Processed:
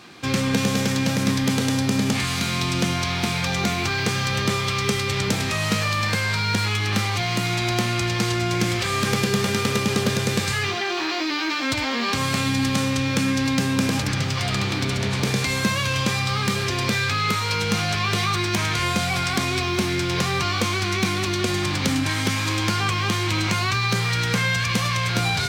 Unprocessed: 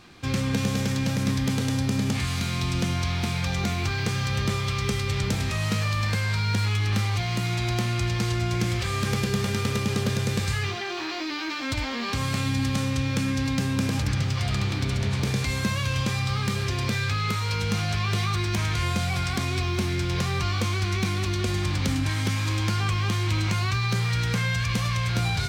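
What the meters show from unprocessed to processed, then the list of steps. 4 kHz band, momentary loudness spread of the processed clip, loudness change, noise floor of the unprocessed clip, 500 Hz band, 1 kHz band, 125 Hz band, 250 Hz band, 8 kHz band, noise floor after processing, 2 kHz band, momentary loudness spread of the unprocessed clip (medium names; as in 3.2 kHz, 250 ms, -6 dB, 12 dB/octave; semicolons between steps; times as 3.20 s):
+6.5 dB, 2 LU, +4.0 dB, -30 dBFS, +6.0 dB, +6.5 dB, -0.5 dB, +4.5 dB, +6.5 dB, -25 dBFS, +6.5 dB, 2 LU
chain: Bessel high-pass 180 Hz, order 2; trim +6.5 dB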